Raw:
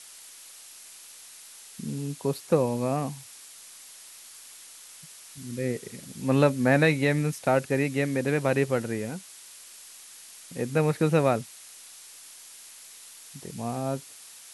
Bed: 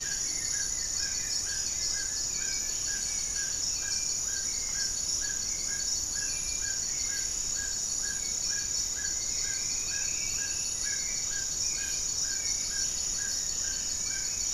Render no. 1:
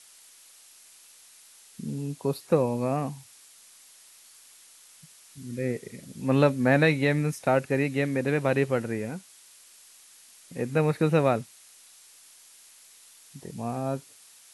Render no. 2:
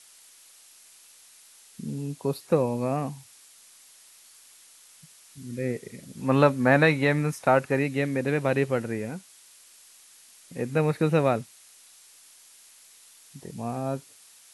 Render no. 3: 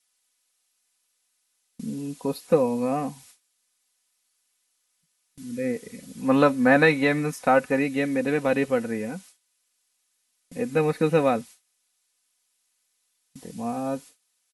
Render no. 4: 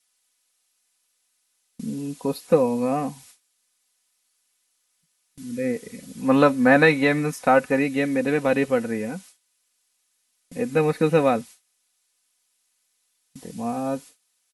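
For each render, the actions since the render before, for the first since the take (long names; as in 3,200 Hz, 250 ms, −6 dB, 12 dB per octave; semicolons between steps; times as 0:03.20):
noise reduction from a noise print 6 dB
0:06.17–0:07.79: parametric band 1,100 Hz +6.5 dB 1.2 octaves
noise gate with hold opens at −39 dBFS; comb filter 4 ms, depth 63%
level +2 dB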